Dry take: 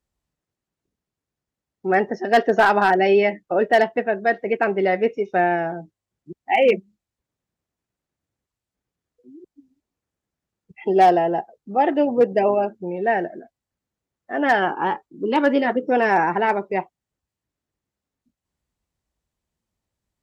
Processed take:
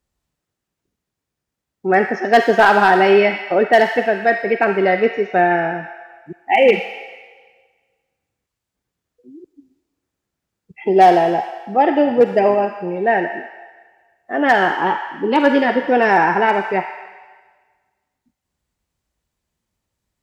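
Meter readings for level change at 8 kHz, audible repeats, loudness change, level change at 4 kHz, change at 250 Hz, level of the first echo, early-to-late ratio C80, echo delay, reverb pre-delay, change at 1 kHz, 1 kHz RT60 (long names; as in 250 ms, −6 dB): can't be measured, no echo audible, +4.5 dB, +6.0 dB, +4.0 dB, no echo audible, 7.0 dB, no echo audible, 36 ms, +4.5 dB, 1.5 s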